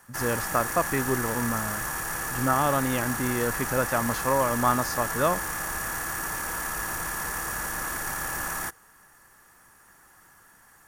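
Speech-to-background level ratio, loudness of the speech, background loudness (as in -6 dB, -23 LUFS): 2.5 dB, -27.5 LUFS, -30.0 LUFS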